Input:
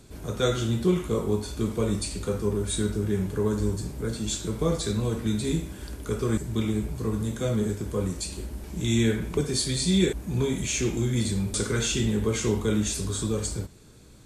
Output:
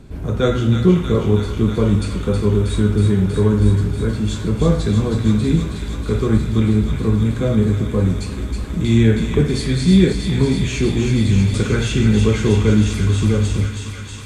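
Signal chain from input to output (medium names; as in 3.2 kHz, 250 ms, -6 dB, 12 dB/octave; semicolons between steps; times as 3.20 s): tone controls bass +7 dB, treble -13 dB; hum notches 60/120 Hz; feedback echo behind a high-pass 319 ms, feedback 83%, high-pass 1.4 kHz, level -5 dB; on a send at -14 dB: reverberation RT60 2.0 s, pre-delay 4 ms; on the sum: trim +6.5 dB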